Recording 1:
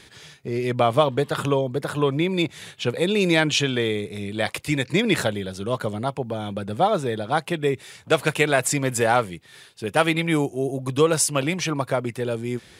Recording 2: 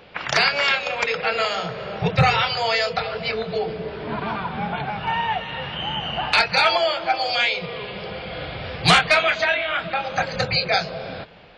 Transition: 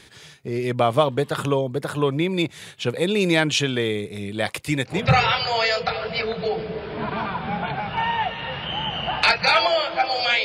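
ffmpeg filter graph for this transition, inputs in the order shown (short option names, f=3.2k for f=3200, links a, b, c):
-filter_complex "[0:a]apad=whole_dur=10.44,atrim=end=10.44,atrim=end=5.11,asetpts=PTS-STARTPTS[a];[1:a]atrim=start=1.95:end=7.54,asetpts=PTS-STARTPTS[b];[a][b]acrossfade=d=0.26:c1=tri:c2=tri"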